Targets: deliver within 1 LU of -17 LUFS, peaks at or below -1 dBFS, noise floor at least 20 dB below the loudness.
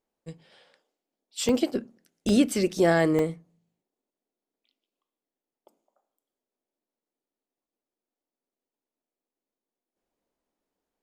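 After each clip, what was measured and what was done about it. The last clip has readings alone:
dropouts 3; longest dropout 1.1 ms; loudness -25.0 LUFS; peak level -10.0 dBFS; loudness target -17.0 LUFS
-> interpolate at 1.49/2.29/3.19 s, 1.1 ms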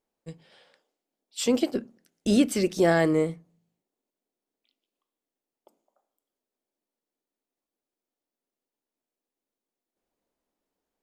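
dropouts 0; loudness -25.0 LUFS; peak level -10.0 dBFS; loudness target -17.0 LUFS
-> trim +8 dB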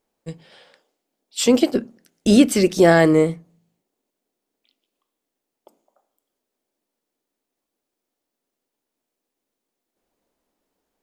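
loudness -17.0 LUFS; peak level -2.0 dBFS; noise floor -83 dBFS

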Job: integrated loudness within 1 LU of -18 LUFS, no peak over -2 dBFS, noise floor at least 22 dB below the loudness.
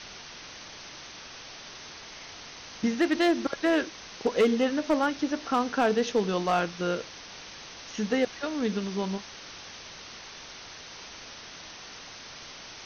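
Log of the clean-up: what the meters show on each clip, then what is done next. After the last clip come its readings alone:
clipped samples 0.5%; clipping level -16.5 dBFS; noise floor -45 dBFS; noise floor target -50 dBFS; loudness -27.5 LUFS; peak level -16.5 dBFS; loudness target -18.0 LUFS
-> clip repair -16.5 dBFS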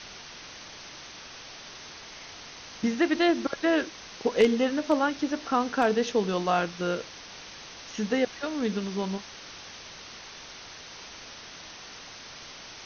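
clipped samples 0.0%; noise floor -45 dBFS; noise floor target -49 dBFS
-> noise reduction 6 dB, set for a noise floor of -45 dBFS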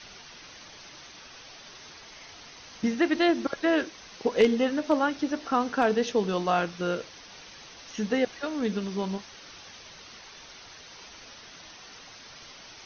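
noise floor -48 dBFS; noise floor target -49 dBFS
-> noise reduction 6 dB, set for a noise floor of -48 dBFS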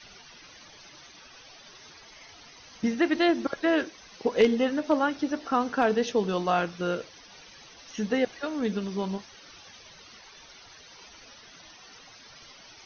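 noise floor -51 dBFS; loudness -27.0 LUFS; peak level -7.5 dBFS; loudness target -18.0 LUFS
-> trim +9 dB; peak limiter -2 dBFS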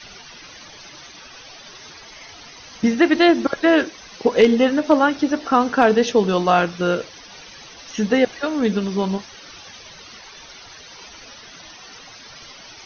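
loudness -18.5 LUFS; peak level -2.0 dBFS; noise floor -42 dBFS

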